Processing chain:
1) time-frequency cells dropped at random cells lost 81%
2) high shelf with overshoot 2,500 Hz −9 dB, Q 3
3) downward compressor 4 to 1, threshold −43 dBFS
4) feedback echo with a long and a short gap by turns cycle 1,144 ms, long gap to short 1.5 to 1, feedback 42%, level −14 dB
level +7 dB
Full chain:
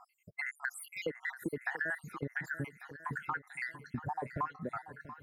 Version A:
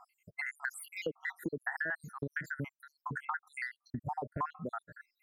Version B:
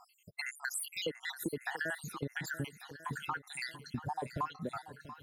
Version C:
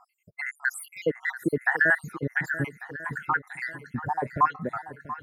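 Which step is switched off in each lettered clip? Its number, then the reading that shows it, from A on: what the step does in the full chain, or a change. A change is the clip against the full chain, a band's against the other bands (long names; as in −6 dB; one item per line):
4, echo-to-direct ratio −11.5 dB to none audible
2, 4 kHz band +11.5 dB
3, average gain reduction 7.5 dB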